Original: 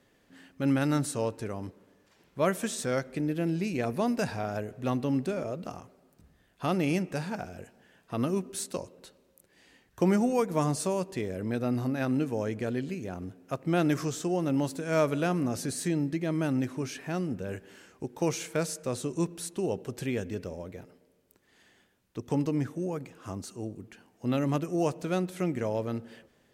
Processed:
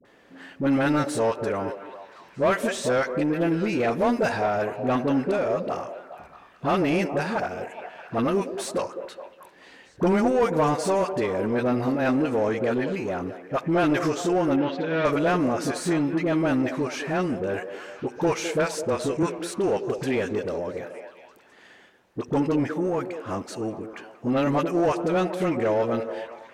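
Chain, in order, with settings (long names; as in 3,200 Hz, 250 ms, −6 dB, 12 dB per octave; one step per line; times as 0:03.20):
all-pass dispersion highs, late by 51 ms, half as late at 700 Hz
mid-hump overdrive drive 17 dB, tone 1,400 Hz, clips at −13.5 dBFS
in parallel at −5.5 dB: soft clipping −31 dBFS, distortion −7 dB
0:14.56–0:15.05: on the sum: loudspeaker in its box 110–4,100 Hz, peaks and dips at 670 Hz −10 dB, 1,100 Hz −7 dB, 3,500 Hz +5 dB
0:18.83–0:19.23: frequency shifter −13 Hz
on a send: echo through a band-pass that steps 209 ms, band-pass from 450 Hz, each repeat 0.7 octaves, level −7.5 dB
on the sum: level +1 dB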